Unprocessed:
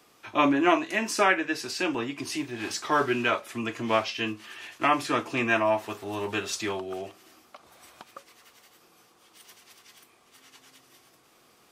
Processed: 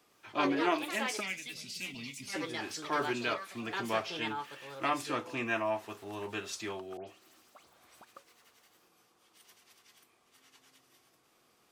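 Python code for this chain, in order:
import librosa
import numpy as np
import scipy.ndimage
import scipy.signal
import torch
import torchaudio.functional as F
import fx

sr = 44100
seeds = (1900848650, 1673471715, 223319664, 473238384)

y = fx.echo_pitch(x, sr, ms=107, semitones=5, count=2, db_per_echo=-6.0)
y = fx.spec_box(y, sr, start_s=1.2, length_s=1.14, low_hz=270.0, high_hz=1900.0, gain_db=-18)
y = fx.dispersion(y, sr, late='highs', ms=110.0, hz=2700.0, at=(6.97, 8.05))
y = F.gain(torch.from_numpy(y), -8.5).numpy()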